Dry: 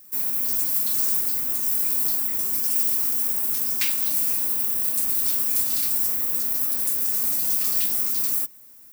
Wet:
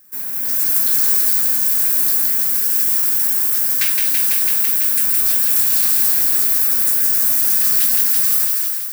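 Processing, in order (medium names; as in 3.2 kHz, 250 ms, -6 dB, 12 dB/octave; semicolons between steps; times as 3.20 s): peaking EQ 1.6 kHz +9 dB 0.43 oct; feedback echo behind a high-pass 166 ms, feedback 83%, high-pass 1.5 kHz, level -4 dB; level rider; trim -1 dB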